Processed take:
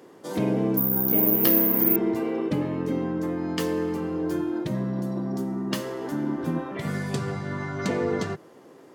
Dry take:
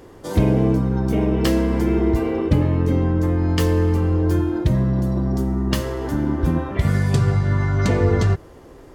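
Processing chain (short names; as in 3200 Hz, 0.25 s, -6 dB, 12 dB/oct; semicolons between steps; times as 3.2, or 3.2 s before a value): HPF 160 Hz 24 dB/oct; 0.77–1.96 careless resampling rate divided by 3×, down filtered, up zero stuff; gain -5 dB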